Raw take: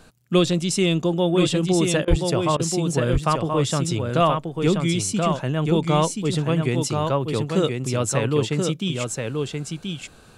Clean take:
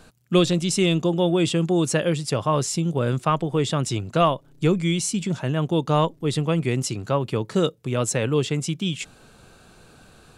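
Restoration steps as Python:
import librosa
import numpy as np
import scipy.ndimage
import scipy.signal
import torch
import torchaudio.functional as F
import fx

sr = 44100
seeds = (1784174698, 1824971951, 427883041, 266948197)

y = fx.highpass(x, sr, hz=140.0, slope=24, at=(2.09, 2.21), fade=0.02)
y = fx.fix_interpolate(y, sr, at_s=(2.05, 2.57), length_ms=25.0)
y = fx.fix_echo_inverse(y, sr, delay_ms=1029, level_db=-4.5)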